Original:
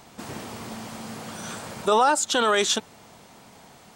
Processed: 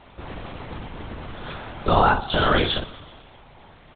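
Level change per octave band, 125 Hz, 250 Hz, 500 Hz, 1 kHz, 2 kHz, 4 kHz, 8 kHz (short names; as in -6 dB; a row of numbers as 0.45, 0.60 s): +13.5 dB, +3.5 dB, -0.5 dB, +1.5 dB, +2.0 dB, 0.0 dB, under -40 dB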